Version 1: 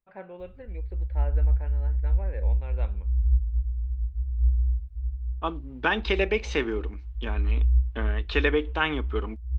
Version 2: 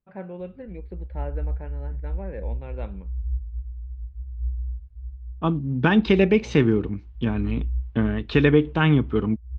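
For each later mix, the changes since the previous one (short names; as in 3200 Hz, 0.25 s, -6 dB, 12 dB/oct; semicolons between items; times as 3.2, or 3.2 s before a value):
second voice: remove HPF 270 Hz 12 dB/oct; background -11.0 dB; master: add bell 160 Hz +12.5 dB 2.4 oct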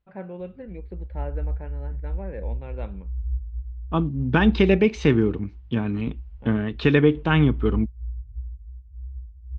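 second voice: entry -1.50 s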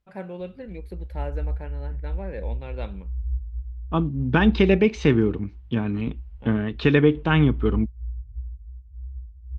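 first voice: remove air absorption 420 m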